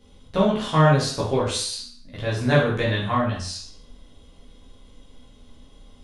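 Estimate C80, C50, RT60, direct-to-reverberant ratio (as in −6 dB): 8.5 dB, 4.0 dB, 0.55 s, −7.0 dB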